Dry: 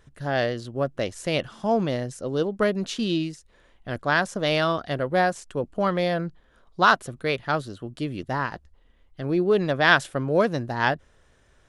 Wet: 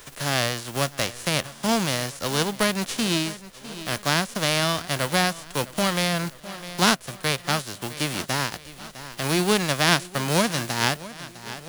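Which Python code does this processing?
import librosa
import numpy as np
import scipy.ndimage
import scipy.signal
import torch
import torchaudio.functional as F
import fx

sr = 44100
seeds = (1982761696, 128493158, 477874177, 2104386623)

p1 = fx.envelope_flatten(x, sr, power=0.3)
p2 = p1 + fx.echo_feedback(p1, sr, ms=655, feedback_pct=47, wet_db=-19.5, dry=0)
y = fx.band_squash(p2, sr, depth_pct=40)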